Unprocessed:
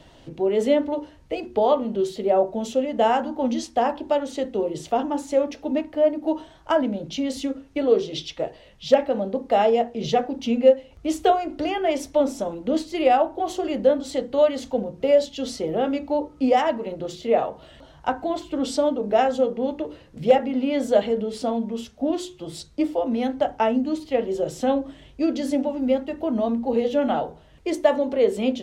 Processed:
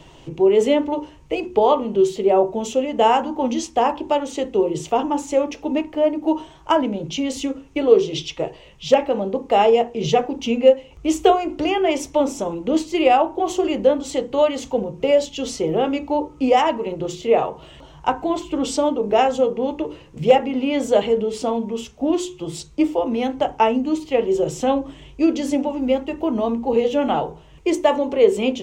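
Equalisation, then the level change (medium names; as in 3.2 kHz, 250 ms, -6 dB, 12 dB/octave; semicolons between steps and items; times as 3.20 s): rippled EQ curve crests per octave 0.72, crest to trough 7 dB; +4.0 dB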